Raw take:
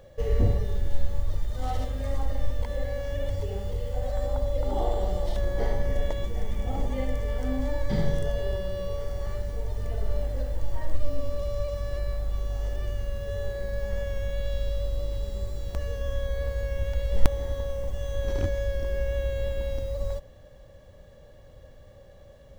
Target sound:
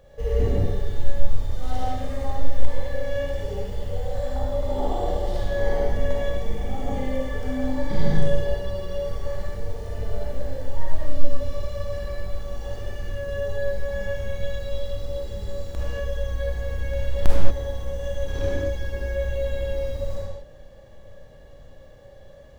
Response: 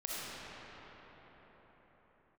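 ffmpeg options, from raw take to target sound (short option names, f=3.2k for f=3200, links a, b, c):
-filter_complex "[1:a]atrim=start_sample=2205,afade=t=out:st=0.37:d=0.01,atrim=end_sample=16758,asetrate=57330,aresample=44100[a];[0:a][a]afir=irnorm=-1:irlink=0,volume=3.5dB"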